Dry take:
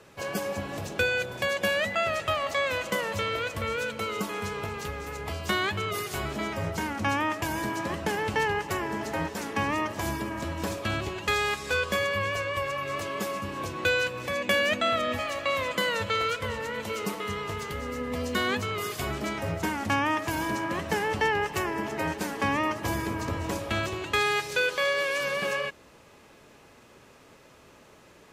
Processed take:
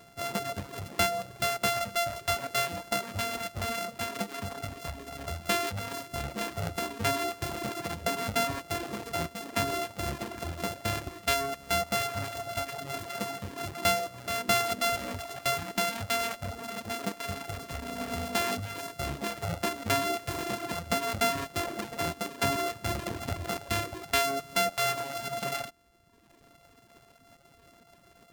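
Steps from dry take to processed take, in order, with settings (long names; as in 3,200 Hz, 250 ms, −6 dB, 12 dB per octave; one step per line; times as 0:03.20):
samples sorted by size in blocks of 64 samples
reverb reduction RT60 1.2 s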